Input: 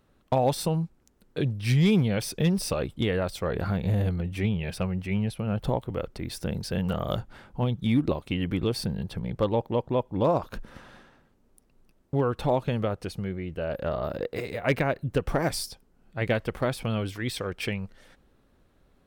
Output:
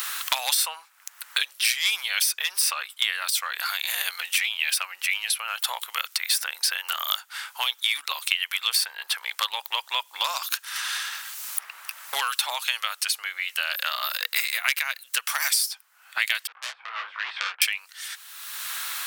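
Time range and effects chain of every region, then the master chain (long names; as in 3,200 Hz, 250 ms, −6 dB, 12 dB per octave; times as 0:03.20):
0:16.47–0:17.62: low-pass filter 1,200 Hz 24 dB per octave + tube saturation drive 31 dB, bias 0.45 + micro pitch shift up and down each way 45 cents
whole clip: high-pass filter 1,100 Hz 24 dB per octave; spectral tilt +4.5 dB per octave; multiband upward and downward compressor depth 100%; level +6.5 dB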